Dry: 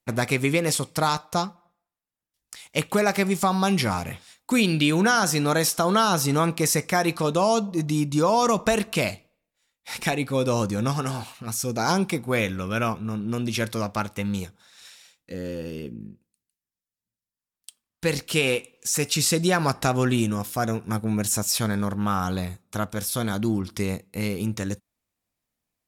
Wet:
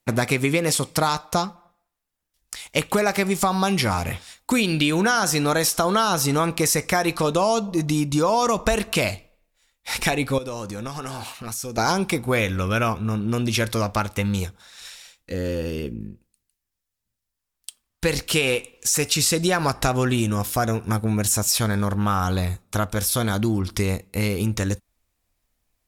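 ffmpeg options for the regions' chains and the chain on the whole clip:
-filter_complex "[0:a]asettb=1/sr,asplit=3[s0][s1][s2];[s0]atrim=end=10.384[s3];[s1]atrim=start=10.38:end=11.78,asetpts=PTS-STARTPTS,afade=t=in:d=0.004:c=qsin,afade=t=out:st=1.396:d=0.004:c=qsin,highpass=f=170:p=1,acompressor=threshold=0.0178:ratio=4:attack=3.2:release=140:knee=1:detection=peak[s4];[s2]atrim=start=11.776[s5];[s3][s4]acrossfade=d=0.004:c1=hsin:c2=qsin[s6];[s6][s5]acrossfade=d=0.004:c1=qsin:c2=hsin,asubboost=boost=5.5:cutoff=63,acompressor=threshold=0.0501:ratio=2.5,volume=2.24"

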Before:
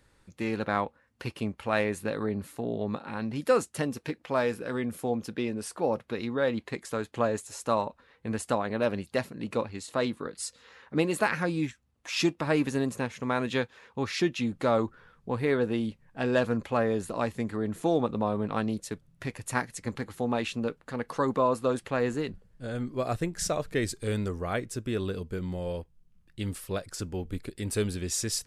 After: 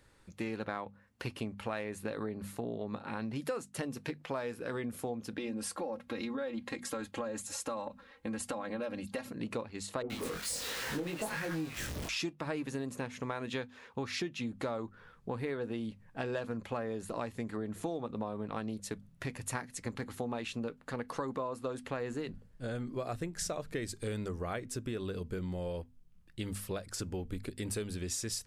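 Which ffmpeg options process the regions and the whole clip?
-filter_complex "[0:a]asettb=1/sr,asplit=3[s0][s1][s2];[s0]atrim=end=5.374[s3];[s1]atrim=start=5.37:end=9.32,asetpts=PTS-STARTPTS,afade=t=in:d=0.004:c=qsin,afade=t=out:st=3.946:d=0.004:c=qsin,bandreject=f=60:t=h:w=6,bandreject=f=120:t=h:w=6,bandreject=f=180:t=h:w=6,bandreject=f=240:t=h:w=6,aecho=1:1:3.7:0.8,atrim=end_sample=174195,acompressor=threshold=0.0251:ratio=2.5:attack=3.2:release=140:knee=1:detection=peak[s4];[s2]atrim=start=9.316[s5];[s3][s4]acrossfade=d=0.004:c1=hsin:c2=qsin[s6];[s6][s5]acrossfade=d=0.004:c1=qsin:c2=hsin,asettb=1/sr,asplit=3[s7][s8][s9];[s7]atrim=end=10.024[s10];[s8]atrim=start=10.02:end=12.09,asetpts=PTS-STARTPTS,afade=t=in:d=0.004:c=qsin,afade=t=out:st=2.066:d=0.004:c=qsin,aeval=exprs='val(0)+0.5*0.0422*sgn(val(0))':c=same,flanger=delay=18.5:depth=5.1:speed=1.3,acrossover=split=1000[s11][s12];[s12]adelay=80[s13];[s11][s13]amix=inputs=2:normalize=0,atrim=end_sample=91287[s14];[s9]atrim=start=12.086[s15];[s10][s14]acrossfade=d=0.004:c1=hsin:c2=qsin[s16];[s16][s15]acrossfade=d=0.004:c1=qsin:c2=hsin,bandreject=f=50:t=h:w=6,bandreject=f=100:t=h:w=6,bandreject=f=150:t=h:w=6,bandreject=f=200:t=h:w=6,bandreject=f=250:t=h:w=6,acompressor=threshold=0.02:ratio=6"

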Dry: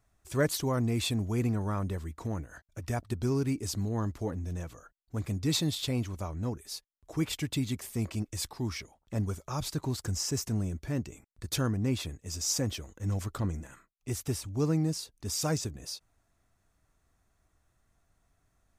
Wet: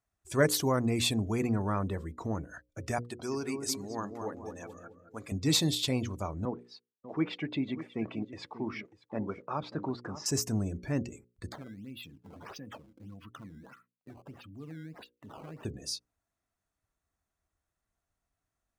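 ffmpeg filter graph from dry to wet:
-filter_complex "[0:a]asettb=1/sr,asplit=3[s0][s1][s2];[s0]atrim=end=2.984[s3];[s1]atrim=start=2.98:end=5.32,asetpts=PTS-STARTPTS,afade=t=in:d=0.004:c=qsin,afade=t=out:st=2.336:d=0.004:c=qsin,highpass=f=650:p=1,asplit=2[s4][s5];[s5]adelay=214,lowpass=f=1300:p=1,volume=0.596,asplit=2[s6][s7];[s7]adelay=214,lowpass=f=1300:p=1,volume=0.49,asplit=2[s8][s9];[s9]adelay=214,lowpass=f=1300:p=1,volume=0.49,asplit=2[s10][s11];[s11]adelay=214,lowpass=f=1300:p=1,volume=0.49,asplit=2[s12][s13];[s13]adelay=214,lowpass=f=1300:p=1,volume=0.49,asplit=2[s14][s15];[s15]adelay=214,lowpass=f=1300:p=1,volume=0.49[s16];[s4][s6][s8][s10][s12][s14][s16]amix=inputs=7:normalize=0,atrim=end_sample=103194[s17];[s2]atrim=start=5.316[s18];[s3][s17]acrossfade=d=0.004:c1=hsin:c2=qsin[s19];[s19][s18]acrossfade=d=0.004:c1=qsin:c2=hsin,asettb=1/sr,asplit=3[s20][s21][s22];[s20]atrim=end=6.454[s23];[s21]atrim=start=6.45:end=10.26,asetpts=PTS-STARTPTS,afade=t=in:d=0.004:c=qsin,afade=t=out:st=3.806:d=0.004:c=qsin,aeval=exprs='val(0)*gte(abs(val(0)),0.00211)':c=same,highpass=200,lowpass=2400,aecho=1:1:590:0.224,atrim=end_sample=168021[s24];[s22]atrim=start=10.256[s25];[s23][s24]acrossfade=d=0.004:c1=hsin:c2=qsin[s26];[s26][s25]acrossfade=d=0.004:c1=qsin:c2=hsin,asettb=1/sr,asplit=3[s27][s28][s29];[s27]atrim=end=11.524[s30];[s28]atrim=start=11.52:end=15.65,asetpts=PTS-STARTPTS,afade=t=in:d=0.004:c=qsin,afade=t=out:st=4.126:d=0.004:c=qsin,highpass=150,equalizer=f=390:t=q:w=4:g=-9,equalizer=f=560:t=q:w=4:g=-8,equalizer=f=810:t=q:w=4:g=-6,equalizer=f=2800:t=q:w=4:g=7,lowpass=f=4500:w=0.5412,lowpass=f=4500:w=1.3066,acompressor=threshold=0.00447:ratio=3:attack=3.2:release=140:knee=1:detection=peak,acrusher=samples=14:mix=1:aa=0.000001:lfo=1:lforange=22.4:lforate=1.6[s31];[s29]atrim=start=15.646[s32];[s30][s31]acrossfade=d=0.004:c1=hsin:c2=qsin[s33];[s33][s32]acrossfade=d=0.004:c1=qsin:c2=hsin,afftdn=nr=15:nf=-52,highpass=f=150:p=1,bandreject=f=60:t=h:w=6,bandreject=f=120:t=h:w=6,bandreject=f=180:t=h:w=6,bandreject=f=240:t=h:w=6,bandreject=f=300:t=h:w=6,bandreject=f=360:t=h:w=6,bandreject=f=420:t=h:w=6,bandreject=f=480:t=h:w=6,bandreject=f=540:t=h:w=6,volume=1.5"

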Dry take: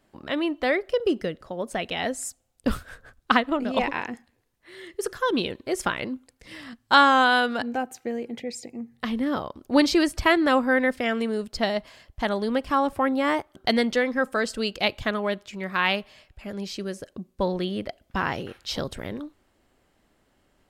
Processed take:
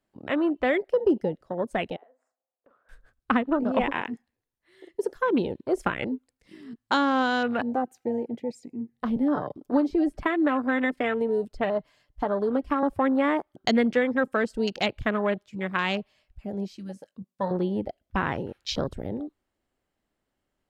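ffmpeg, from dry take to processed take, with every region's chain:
-filter_complex "[0:a]asettb=1/sr,asplit=3[s0][s1][s2];[s0]atrim=end=1.964[s3];[s1]atrim=start=1.96:end=2.89,asetpts=PTS-STARTPTS,afade=t=in:d=0.004:c=qsin,afade=t=out:st=0.926:d=0.004:c=qsin,asuperpass=centerf=760:order=4:qfactor=0.89,acompressor=threshold=0.00447:ratio=3:attack=3.2:release=140:knee=1:detection=peak,asplit=2[s4][s5];[s5]adelay=43,volume=0.355[s6];[s4][s6]amix=inputs=2:normalize=0,atrim=end_sample=41013[s7];[s2]atrim=start=2.886[s8];[s3][s7]acrossfade=d=0.004:c1=hsin:c2=qsin[s9];[s9][s8]acrossfade=d=0.004:c1=qsin:c2=hsin,asettb=1/sr,asplit=3[s10][s11][s12];[s10]atrim=end=9.164[s13];[s11]atrim=start=9.16:end=12.83,asetpts=PTS-STARTPTS,afade=t=in:d=0.004:c=qsin,afade=t=out:st=3.666:d=0.004:c=qsin,aecho=1:1:6.8:0.47,atrim=end_sample=161847,acrossover=split=170|2500[s14][s15][s16];[s14]acompressor=threshold=0.00891:ratio=4[s17];[s15]acompressor=threshold=0.0708:ratio=4[s18];[s16]acompressor=threshold=0.00631:ratio=4[s19];[s17][s18][s19]amix=inputs=3:normalize=0[s20];[s12]atrim=start=12.826[s21];[s13][s20]acrossfade=d=0.004:c1=hsin:c2=qsin[s22];[s22][s21]acrossfade=d=0.004:c1=qsin:c2=hsin,asettb=1/sr,asplit=3[s23][s24][s25];[s23]atrim=end=16.764[s26];[s24]atrim=start=16.76:end=17.51,asetpts=PTS-STARTPTS,afade=t=in:d=0.004:c=qsin,afade=t=out:st=0.746:d=0.004:c=qsin,highpass=180,equalizer=f=360:w=1.4:g=-14,asplit=2[s27][s28];[s28]adelay=21,volume=0.251[s29];[s27][s29]amix=inputs=2:normalize=0,atrim=end_sample=33075[s30];[s25]atrim=start=17.506[s31];[s26][s30]acrossfade=d=0.004:c1=hsin:c2=qsin[s32];[s32][s31]acrossfade=d=0.004:c1=qsin:c2=hsin,afwtdn=0.0251,acrossover=split=460[s33][s34];[s34]acompressor=threshold=0.0562:ratio=6[s35];[s33][s35]amix=inputs=2:normalize=0,volume=1.26"

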